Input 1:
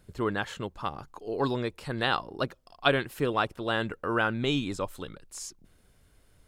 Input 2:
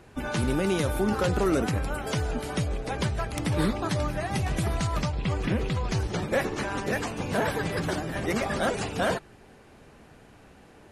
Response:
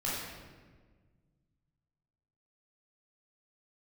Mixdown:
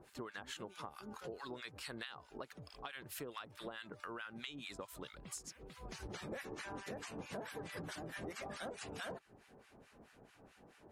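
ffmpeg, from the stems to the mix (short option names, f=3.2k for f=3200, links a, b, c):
-filter_complex "[0:a]highpass=140,tiltshelf=f=810:g=-6,acompressor=threshold=-30dB:ratio=6,volume=-2.5dB,asplit=2[a][b];[1:a]lowshelf=f=130:g=-8,volume=-4.5dB[c];[b]apad=whole_len=481527[d];[c][d]sidechaincompress=threshold=-59dB:ratio=4:attack=27:release=427[e];[a][e]amix=inputs=2:normalize=0,acrossover=split=1100[f][g];[f]aeval=exprs='val(0)*(1-1/2+1/2*cos(2*PI*4.6*n/s))':c=same[h];[g]aeval=exprs='val(0)*(1-1/2-1/2*cos(2*PI*4.6*n/s))':c=same[i];[h][i]amix=inputs=2:normalize=0,acompressor=threshold=-43dB:ratio=6"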